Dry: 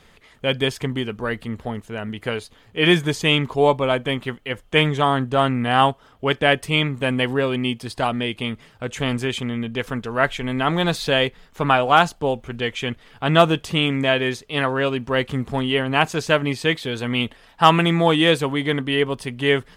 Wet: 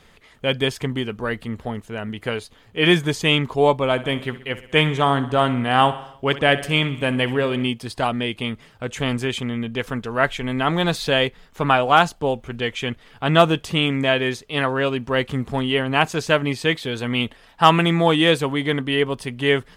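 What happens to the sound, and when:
3.91–7.67 s: feedback delay 64 ms, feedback 56%, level -15 dB

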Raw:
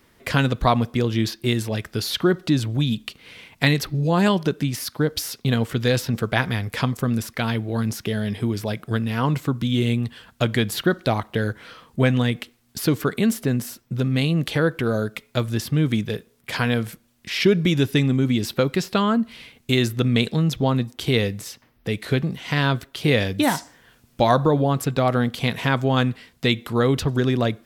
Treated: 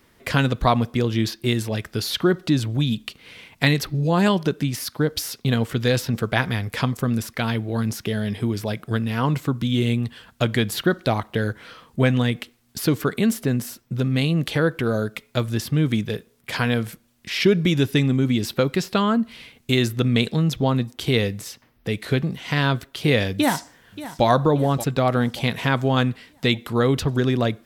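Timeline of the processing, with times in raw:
23.34–24.25 s: echo throw 580 ms, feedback 50%, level -14.5 dB

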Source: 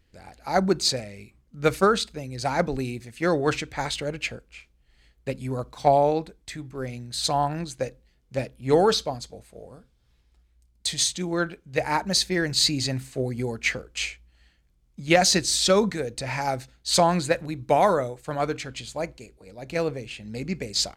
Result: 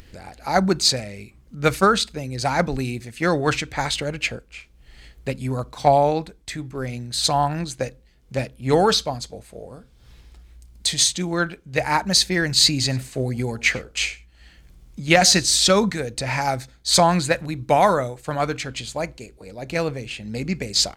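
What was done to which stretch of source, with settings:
12.74–15.44 s: delay 96 ms -21 dB
16.58–17.04 s: band-stop 2.8 kHz, Q 8
whole clip: upward compressor, threshold -41 dBFS; dynamic bell 420 Hz, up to -5 dB, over -34 dBFS, Q 1; trim +5.5 dB

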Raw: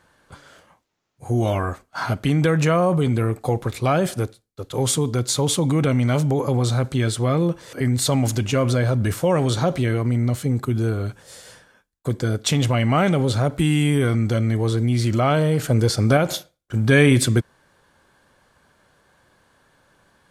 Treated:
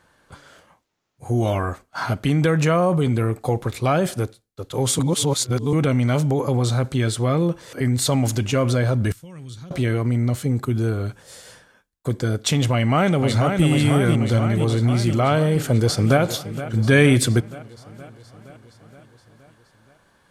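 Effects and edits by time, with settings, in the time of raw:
4.99–5.73 s: reverse
9.12–9.71 s: amplifier tone stack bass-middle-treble 6-0-2
12.73–13.66 s: echo throw 490 ms, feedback 70%, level -5 dB
15.51–16.21 s: echo throw 470 ms, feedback 65%, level -13.5 dB

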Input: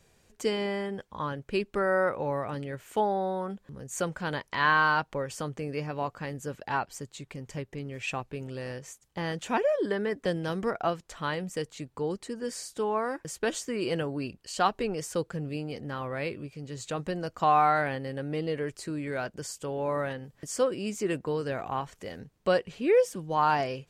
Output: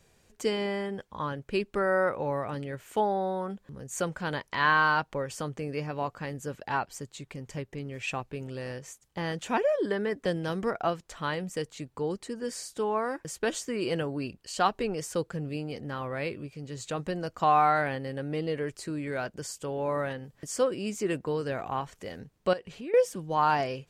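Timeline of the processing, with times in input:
22.53–22.94 s: compression 3:1, threshold -39 dBFS

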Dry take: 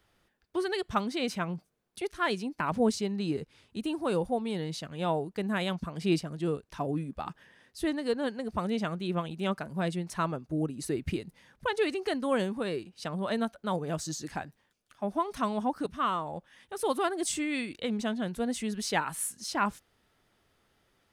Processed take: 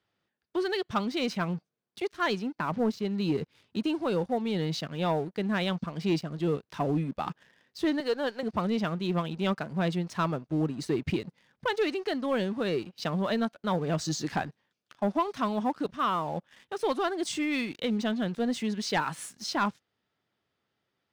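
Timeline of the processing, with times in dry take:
2.39–3.05 s: treble shelf 3.9 kHz -10 dB
8.00–8.43 s: high-pass 390 Hz
whole clip: Chebyshev band-pass 120–4800 Hz, order 2; gain riding within 5 dB 0.5 s; waveshaping leveller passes 2; trim -4 dB

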